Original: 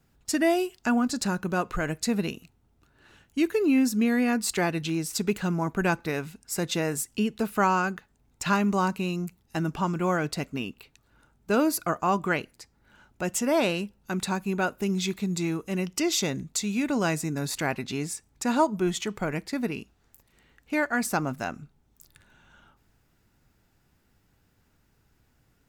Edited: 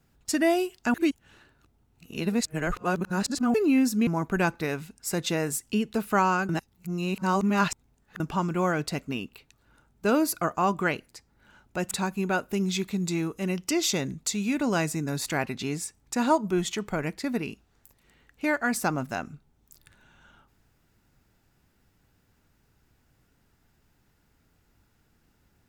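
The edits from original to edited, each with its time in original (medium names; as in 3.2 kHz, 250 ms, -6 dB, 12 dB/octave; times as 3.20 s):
0.94–3.54 s: reverse
4.07–5.52 s: delete
7.94–9.65 s: reverse
13.36–14.20 s: delete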